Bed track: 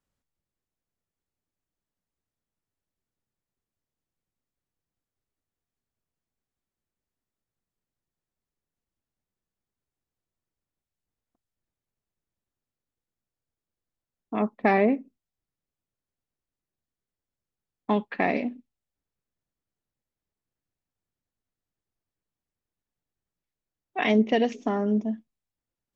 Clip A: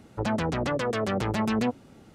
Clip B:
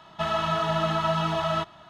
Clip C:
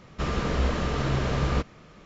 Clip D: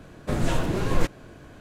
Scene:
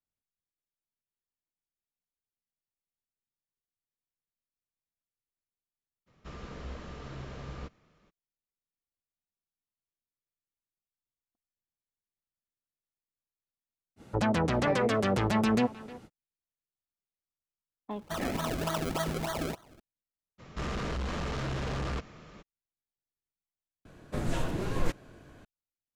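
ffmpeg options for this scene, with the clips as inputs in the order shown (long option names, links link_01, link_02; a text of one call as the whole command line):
ffmpeg -i bed.wav -i cue0.wav -i cue1.wav -i cue2.wav -i cue3.wav -filter_complex "[3:a]asplit=2[link_01][link_02];[0:a]volume=-14dB[link_03];[1:a]asplit=2[link_04][link_05];[link_05]adelay=310,highpass=300,lowpass=3400,asoftclip=type=hard:threshold=-24.5dB,volume=-16dB[link_06];[link_04][link_06]amix=inputs=2:normalize=0[link_07];[2:a]acrusher=samples=33:mix=1:aa=0.000001:lfo=1:lforange=33:lforate=3.4[link_08];[link_02]asoftclip=type=tanh:threshold=-30.5dB[link_09];[link_03]asplit=2[link_10][link_11];[link_10]atrim=end=23.854[link_12];[4:a]atrim=end=1.6,asetpts=PTS-STARTPTS,volume=-7dB[link_13];[link_11]atrim=start=25.446[link_14];[link_01]atrim=end=2.05,asetpts=PTS-STARTPTS,volume=-16.5dB,afade=type=in:duration=0.02,afade=type=out:start_time=2.03:duration=0.02,adelay=6060[link_15];[link_07]atrim=end=2.14,asetpts=PTS-STARTPTS,afade=type=in:duration=0.05,afade=type=out:start_time=2.09:duration=0.05,adelay=615636S[link_16];[link_08]atrim=end=1.89,asetpts=PTS-STARTPTS,volume=-7dB,afade=type=in:duration=0.004:curve=hsin,afade=type=out:start_time=1.886:duration=0.004:curve=hsin,adelay=17910[link_17];[link_09]atrim=end=2.05,asetpts=PTS-STARTPTS,volume=-0.5dB,afade=type=in:duration=0.02,afade=type=out:start_time=2.03:duration=0.02,adelay=20380[link_18];[link_12][link_13]acrossfade=duration=0.004:curve1=hsin:curve2=hsin[link_19];[link_19][link_14]acrossfade=duration=0.004:curve1=hsin:curve2=hsin[link_20];[link_20][link_15][link_16][link_17][link_18]amix=inputs=5:normalize=0" out.wav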